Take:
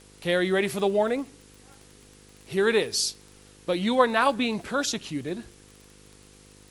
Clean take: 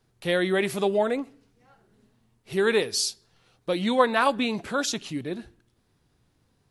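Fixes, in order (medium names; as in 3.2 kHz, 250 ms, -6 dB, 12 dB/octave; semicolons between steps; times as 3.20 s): de-click; de-hum 50.7 Hz, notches 10; expander -45 dBFS, range -21 dB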